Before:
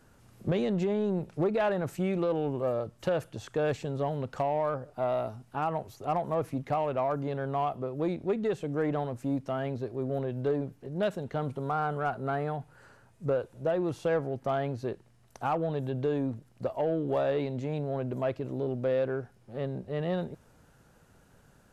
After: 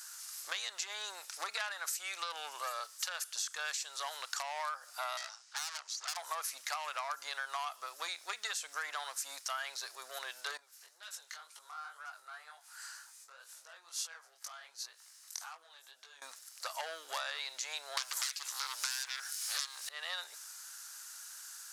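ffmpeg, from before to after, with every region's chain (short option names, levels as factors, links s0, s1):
-filter_complex "[0:a]asettb=1/sr,asplit=3[s0][s1][s2];[s0]atrim=end=5.174[s3];[s1]atrim=start=5.17:end=6.17,asetpts=PTS-STARTPTS,afade=t=in:d=0.004:c=qsin,afade=t=out:st=0.996:d=0.004:c=qsin,lowpass=f=6700:w=0.5412,lowpass=f=6700:w=1.3066,aeval=exprs='(tanh(89.1*val(0)+0.8)-tanh(0.8))/89.1':c=same[s4];[s2]atrim=start=6.166[s5];[s3][s4]acrossfade=d=0.004:c1=hsin:c2=qsin[s6];[s6][s5]acrossfade=d=0.004:c1=qsin:c2=hsin,asettb=1/sr,asplit=3[s7][s8][s9];[s7]atrim=end=10.574[s10];[s8]atrim=start=10.57:end=16.22,asetpts=PTS-STARTPTS,afade=t=in:d=0.004:c=qsin,afade=t=out:st=5.646:d=0.004:c=qsin,acompressor=threshold=0.00631:ratio=6:attack=3.2:release=140:knee=1:detection=peak,flanger=delay=18:depth=6.6:speed=2[s11];[s9]atrim=start=16.216[s12];[s10][s11]acrossfade=d=0.004:c1=hsin:c2=qsin[s13];[s13][s12]acrossfade=d=0.004:c1=qsin:c2=hsin,asettb=1/sr,asplit=3[s14][s15][s16];[s14]atrim=end=17.974[s17];[s15]atrim=start=17.97:end=19.89,asetpts=PTS-STARTPTS,afade=t=in:d=0.004:c=qsin,afade=t=out:st=1.916:d=0.004:c=qsin,tiltshelf=f=1200:g=-8,asplit=2[s18][s19];[s19]adelay=14,volume=0.224[s20];[s18][s20]amix=inputs=2:normalize=0,atrim=end_sample=84672,aeval=exprs='0.0944*sin(PI/2*6.31*val(0)/0.0944)':c=same[s21];[s16]atrim=start=19.886[s22];[s17][s21]acrossfade=d=0.004:c1=hsin:c2=qsin[s23];[s23][s22]acrossfade=d=0.004:c1=qsin:c2=hsin,highpass=f=1300:w=0.5412,highpass=f=1300:w=1.3066,highshelf=f=3800:t=q:w=1.5:g=10.5,acompressor=threshold=0.00447:ratio=12,volume=4.22"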